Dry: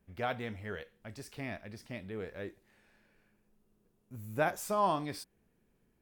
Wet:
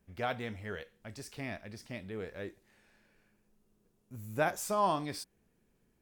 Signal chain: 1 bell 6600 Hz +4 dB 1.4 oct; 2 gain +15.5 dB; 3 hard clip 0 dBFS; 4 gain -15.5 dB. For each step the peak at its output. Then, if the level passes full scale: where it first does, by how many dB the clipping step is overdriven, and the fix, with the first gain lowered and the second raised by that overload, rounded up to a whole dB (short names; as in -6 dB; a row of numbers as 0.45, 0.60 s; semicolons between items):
-18.0, -2.5, -2.5, -18.0 dBFS; no overload